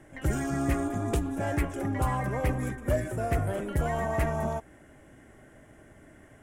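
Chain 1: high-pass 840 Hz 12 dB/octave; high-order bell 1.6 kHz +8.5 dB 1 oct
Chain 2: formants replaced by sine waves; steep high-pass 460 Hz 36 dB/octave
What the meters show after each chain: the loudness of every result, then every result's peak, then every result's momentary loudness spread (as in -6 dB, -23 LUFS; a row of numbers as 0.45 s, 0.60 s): -33.0 LUFS, -30.0 LUFS; -17.5 dBFS, -7.5 dBFS; 7 LU, 14 LU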